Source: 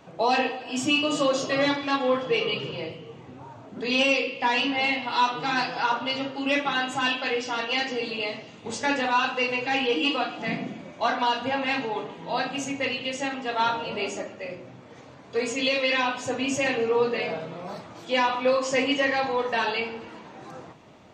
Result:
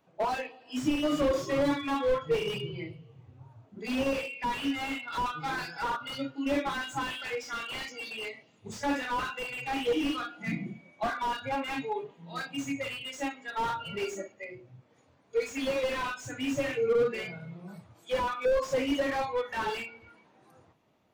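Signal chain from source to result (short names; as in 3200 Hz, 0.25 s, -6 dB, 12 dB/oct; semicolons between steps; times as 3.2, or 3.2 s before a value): dynamic EQ 2000 Hz, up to -4 dB, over -38 dBFS, Q 2.7; spectral noise reduction 18 dB; slew limiter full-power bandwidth 39 Hz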